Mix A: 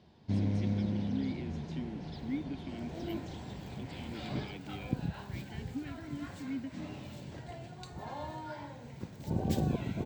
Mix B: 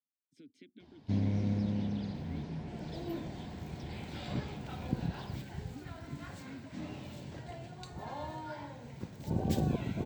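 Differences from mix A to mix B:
speech −10.5 dB
first sound: entry +0.80 s

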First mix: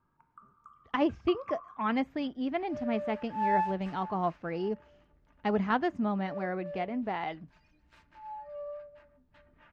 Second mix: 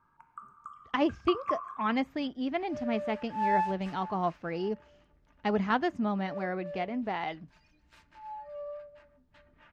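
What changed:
first sound +8.0 dB
master: add high-shelf EQ 3,900 Hz +8 dB

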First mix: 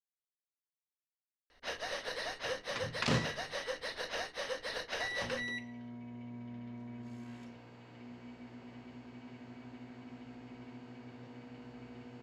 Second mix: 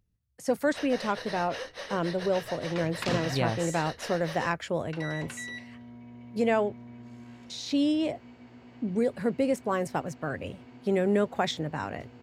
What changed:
speech: unmuted
first sound: entry −0.90 s

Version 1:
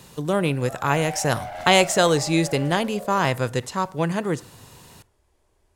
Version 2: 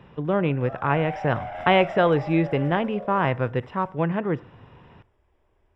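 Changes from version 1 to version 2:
speech: add high-frequency loss of the air 250 metres
master: add Savitzky-Golay smoothing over 25 samples

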